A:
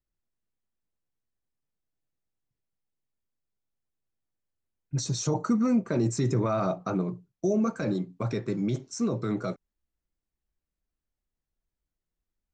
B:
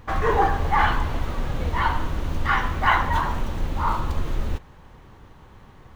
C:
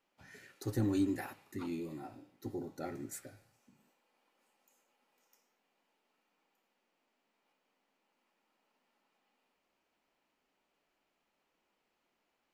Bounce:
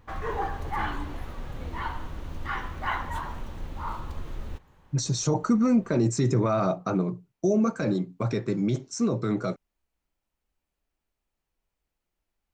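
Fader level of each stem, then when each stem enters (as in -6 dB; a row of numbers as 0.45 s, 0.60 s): +2.5 dB, -10.5 dB, -9.5 dB; 0.00 s, 0.00 s, 0.00 s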